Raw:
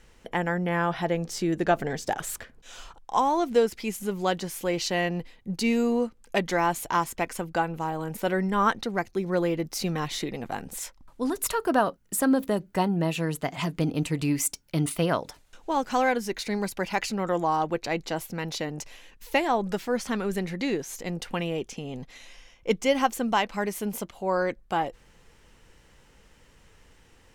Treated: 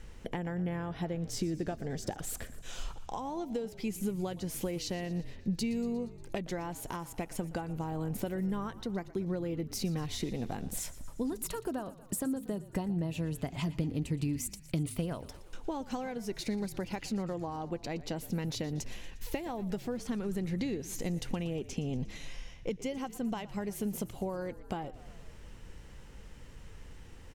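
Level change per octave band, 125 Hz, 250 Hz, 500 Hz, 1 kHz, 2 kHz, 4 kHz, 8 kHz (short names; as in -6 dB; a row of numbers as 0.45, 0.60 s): -3.5, -6.0, -11.0, -15.5, -15.0, -9.0, -7.5 dB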